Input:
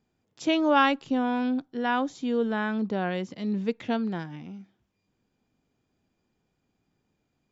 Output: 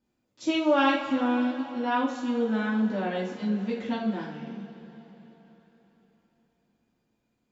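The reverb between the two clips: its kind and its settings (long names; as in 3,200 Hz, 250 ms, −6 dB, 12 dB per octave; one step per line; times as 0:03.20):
coupled-rooms reverb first 0.4 s, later 4.1 s, from −18 dB, DRR −7.5 dB
level −9 dB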